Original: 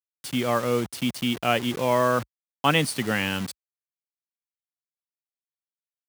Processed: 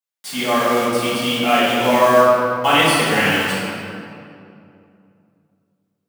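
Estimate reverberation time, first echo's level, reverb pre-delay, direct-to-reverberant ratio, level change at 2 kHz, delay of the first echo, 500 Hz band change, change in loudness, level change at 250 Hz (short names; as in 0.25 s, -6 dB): 2.6 s, none, 3 ms, -11.5 dB, +10.0 dB, none, +9.5 dB, +8.5 dB, +6.0 dB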